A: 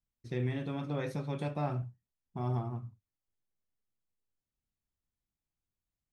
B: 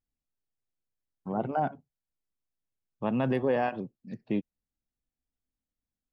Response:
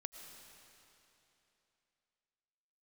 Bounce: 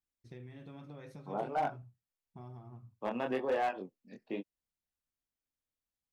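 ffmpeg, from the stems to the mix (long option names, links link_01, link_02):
-filter_complex "[0:a]acompressor=threshold=-36dB:ratio=6,volume=-9.5dB[link_01];[1:a]highpass=360,flanger=delay=19:depth=6.2:speed=1.1,volume=0dB[link_02];[link_01][link_02]amix=inputs=2:normalize=0,asoftclip=type=hard:threshold=-26dB"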